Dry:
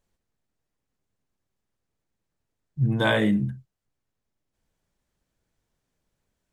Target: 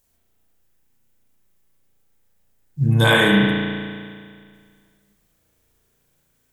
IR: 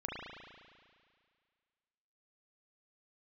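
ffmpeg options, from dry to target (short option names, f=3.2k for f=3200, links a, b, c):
-filter_complex "[0:a]aemphasis=mode=production:type=75fm[a];[1:a]atrim=start_sample=2205[b];[a][b]afir=irnorm=-1:irlink=0,volume=6.5dB"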